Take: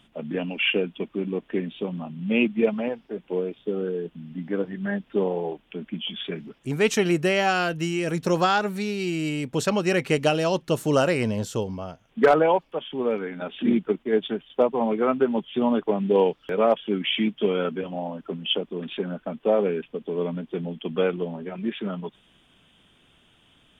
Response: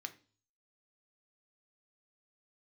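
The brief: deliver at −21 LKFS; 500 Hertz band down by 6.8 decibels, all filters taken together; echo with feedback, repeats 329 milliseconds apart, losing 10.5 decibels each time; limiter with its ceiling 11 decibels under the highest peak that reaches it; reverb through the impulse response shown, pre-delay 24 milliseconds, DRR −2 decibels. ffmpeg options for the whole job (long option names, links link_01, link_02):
-filter_complex "[0:a]equalizer=frequency=500:width_type=o:gain=-8.5,alimiter=limit=-21.5dB:level=0:latency=1,aecho=1:1:329|658|987:0.299|0.0896|0.0269,asplit=2[link_01][link_02];[1:a]atrim=start_sample=2205,adelay=24[link_03];[link_02][link_03]afir=irnorm=-1:irlink=0,volume=4.5dB[link_04];[link_01][link_04]amix=inputs=2:normalize=0,volume=8dB"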